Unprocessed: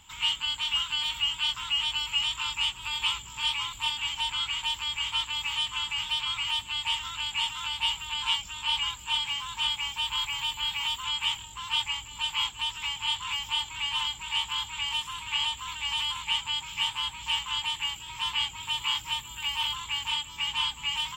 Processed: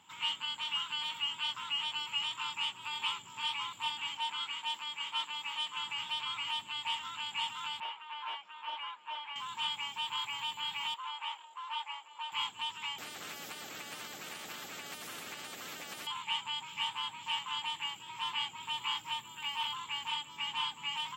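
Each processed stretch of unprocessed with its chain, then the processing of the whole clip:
4.17–5.77 HPF 200 Hz + three-band expander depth 70%
7.8–9.36 overloaded stage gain 24.5 dB + BPF 600–2100 Hz
10.94–12.32 HPF 600 Hz 24 dB/oct + tilt -4 dB/oct
12.98–16.07 Butterworth band-stop 980 Hz, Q 2.1 + compressor 10:1, threshold -30 dBFS + spectral compressor 4:1
whole clip: Bessel high-pass 210 Hz, order 4; high shelf 2100 Hz -11.5 dB

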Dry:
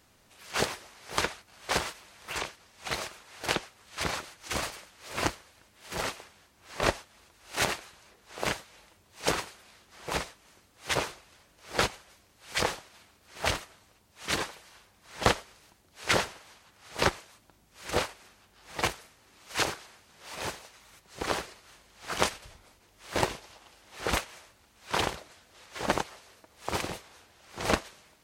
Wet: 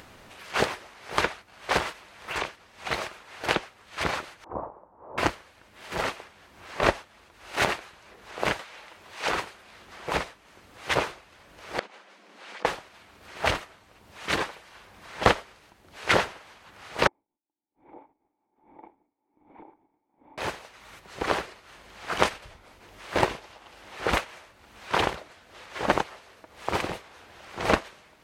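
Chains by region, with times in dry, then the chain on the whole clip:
4.44–5.18 Chebyshev low-pass 1000 Hz, order 4 + low shelf 360 Hz -6.5 dB
8.59–9.33 overdrive pedal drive 12 dB, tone 6900 Hz, clips at -10 dBFS + compressor 4:1, threshold -27 dBFS
11.79–12.65 compressor 12:1, threshold -42 dBFS + brick-wall FIR high-pass 170 Hz + air absorption 53 m
17.07–20.38 differentiator + sample leveller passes 2 + vocal tract filter u
whole clip: tone controls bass -3 dB, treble -10 dB; upward compressor, threshold -45 dBFS; gain +5 dB

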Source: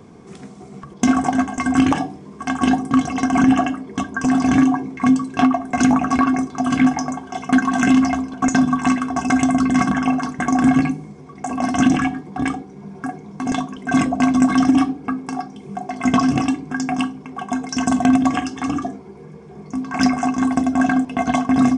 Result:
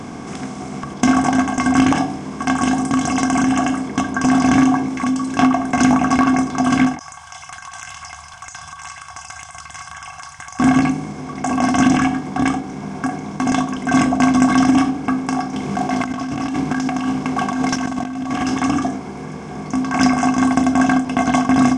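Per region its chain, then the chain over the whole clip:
2.58–3.88 bell 8100 Hz +10.5 dB 0.94 oct + compressor 2.5:1, threshold -19 dBFS
4.88–5.39 high shelf 5900 Hz +9 dB + comb 3.5 ms, depth 37% + compressor 2:1, threshold -29 dBFS
6.99–10.6 elliptic band-stop 100–950 Hz, stop band 70 dB + pre-emphasis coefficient 0.8 + compressor 2.5:1, threshold -45 dBFS
15.53–18.58 CVSD 64 kbps + Bessel low-pass 6100 Hz, order 4 + negative-ratio compressor -28 dBFS
whole clip: per-bin compression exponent 0.6; ending taper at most 150 dB/s; gain -1 dB

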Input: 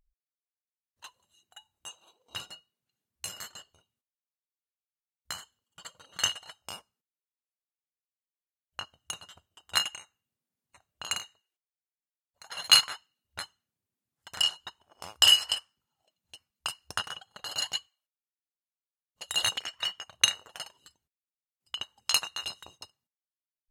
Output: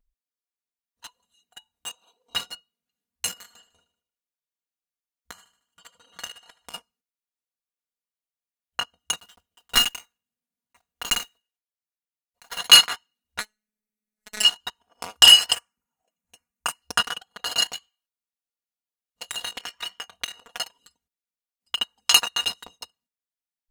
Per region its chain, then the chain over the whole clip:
3.33–6.74 compressor 2:1, threshold -52 dBFS + feedback echo 76 ms, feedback 47%, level -13.5 dB
9.17–12.6 block floating point 3-bit + tube stage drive 19 dB, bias 0.5
13.4–14.45 bell 3800 Hz -6 dB 0.29 oct + comb 4.3 ms, depth 41% + robotiser 213 Hz
15.52–16.82 block floating point 7-bit + band shelf 3900 Hz -11 dB 1 oct
17.63–20.4 doubler 22 ms -11 dB + compressor 10:1, threshold -37 dBFS
whole clip: comb 4.2 ms, depth 90%; sample leveller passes 2

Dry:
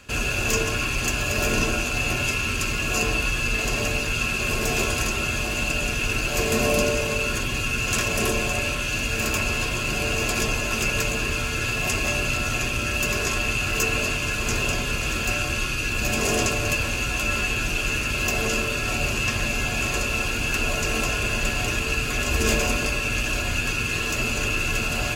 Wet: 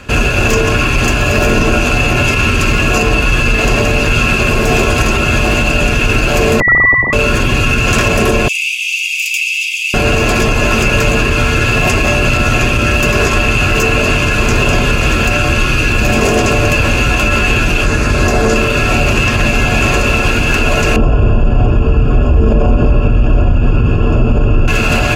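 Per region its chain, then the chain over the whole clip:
6.6–7.13 sine-wave speech + inverted band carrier 2500 Hz
8.48–9.94 steep high-pass 2200 Hz 96 dB/oct + notch 4200 Hz, Q 6.2
17.84–18.56 LPF 11000 Hz + bell 2800 Hz -8.5 dB 0.61 oct + doubler 22 ms -11.5 dB
20.96–24.68 running mean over 22 samples + low shelf 160 Hz +8 dB
whole clip: high shelf 3300 Hz -12 dB; maximiser +18 dB; gain -1 dB

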